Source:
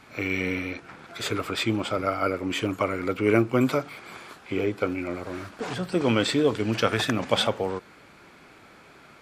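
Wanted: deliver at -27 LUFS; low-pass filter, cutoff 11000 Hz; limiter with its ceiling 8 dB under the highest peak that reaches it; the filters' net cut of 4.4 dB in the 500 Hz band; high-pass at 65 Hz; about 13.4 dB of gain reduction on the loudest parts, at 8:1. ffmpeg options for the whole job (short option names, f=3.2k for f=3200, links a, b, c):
-af "highpass=65,lowpass=11k,equalizer=f=500:t=o:g=-5.5,acompressor=threshold=-33dB:ratio=8,volume=12dB,alimiter=limit=-15.5dB:level=0:latency=1"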